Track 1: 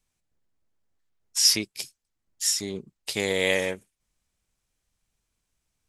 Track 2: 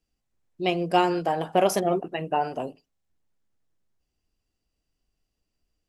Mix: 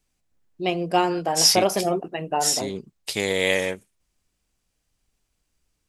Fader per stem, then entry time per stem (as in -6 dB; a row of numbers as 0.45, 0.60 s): +2.0, +0.5 dB; 0.00, 0.00 s